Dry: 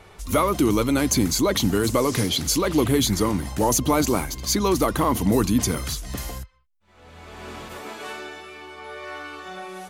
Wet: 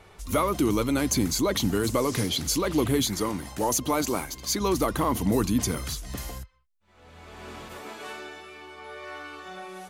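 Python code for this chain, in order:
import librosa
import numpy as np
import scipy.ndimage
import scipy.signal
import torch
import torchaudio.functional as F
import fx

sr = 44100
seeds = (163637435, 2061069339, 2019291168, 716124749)

y = fx.low_shelf(x, sr, hz=190.0, db=-8.5, at=(3.02, 4.61))
y = y * 10.0 ** (-4.0 / 20.0)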